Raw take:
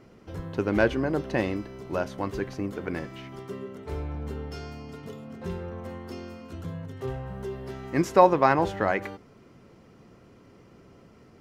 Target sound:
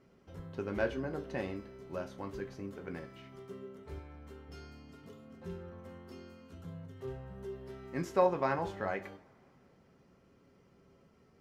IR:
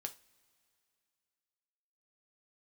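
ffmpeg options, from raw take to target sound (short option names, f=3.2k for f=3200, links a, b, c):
-filter_complex "[0:a]asettb=1/sr,asplit=3[a][b][c];[a]atrim=end=3.994[d];[b]atrim=start=3.99:end=4.49,asetpts=PTS-STARTPTS,afade=t=in:d=0.004:c=qsin,afade=t=out:st=0.496:d=0.004:c=qsin,lowshelf=f=390:g=-7.5[e];[c]atrim=start=4.486[f];[d][e]acrossfade=d=0.004:c1=hsin:c2=qsin[g];[g][f]acrossfade=d=0.004:c1=qsin:c2=hsin[h];[1:a]atrim=start_sample=2205[i];[h][i]afir=irnorm=-1:irlink=0,volume=-8.5dB"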